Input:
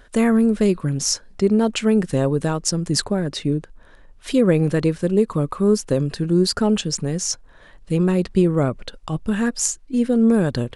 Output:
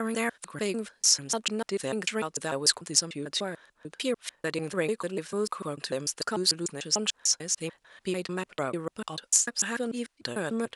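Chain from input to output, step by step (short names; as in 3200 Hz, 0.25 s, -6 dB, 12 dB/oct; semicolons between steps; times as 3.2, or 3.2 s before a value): slices in reverse order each 0.148 s, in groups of 3; HPF 1500 Hz 6 dB/oct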